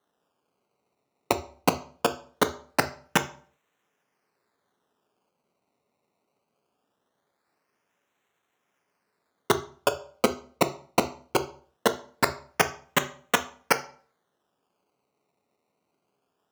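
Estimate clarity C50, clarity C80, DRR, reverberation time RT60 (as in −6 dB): 15.0 dB, 19.5 dB, 8.5 dB, 0.45 s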